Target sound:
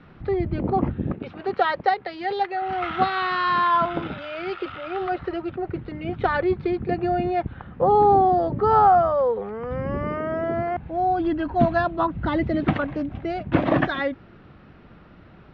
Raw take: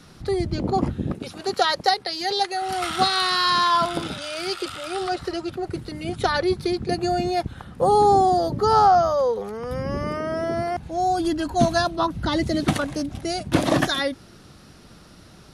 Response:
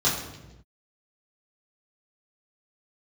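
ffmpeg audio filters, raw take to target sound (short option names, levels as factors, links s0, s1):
-af "lowpass=f=2600:w=0.5412,lowpass=f=2600:w=1.3066"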